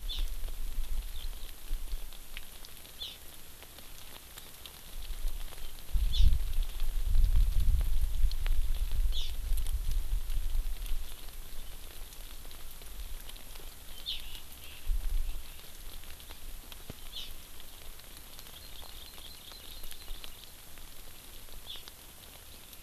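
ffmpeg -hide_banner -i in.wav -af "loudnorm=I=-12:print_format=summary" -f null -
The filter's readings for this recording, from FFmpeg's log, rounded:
Input Integrated:    -40.8 LUFS
Input True Peak:     -11.0 dBTP
Input LRA:            13.0 LU
Input Threshold:     -50.8 LUFS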